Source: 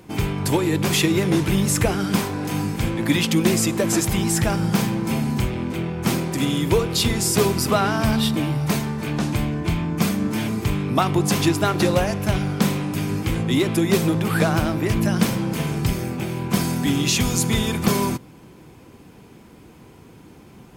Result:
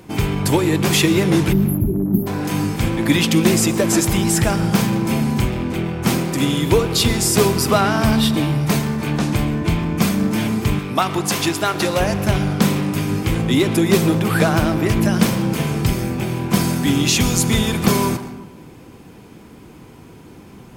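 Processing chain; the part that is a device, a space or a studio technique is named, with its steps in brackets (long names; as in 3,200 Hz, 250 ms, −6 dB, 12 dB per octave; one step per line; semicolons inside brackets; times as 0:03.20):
0:01.53–0:02.27: time-frequency box erased 410–11,000 Hz
saturated reverb return (on a send at −8 dB: convolution reverb RT60 0.80 s, pre-delay 109 ms + soft clipping −23 dBFS, distortion −8 dB)
0:10.79–0:12.00: on the sum: low-shelf EQ 400 Hz −9 dB
level +3.5 dB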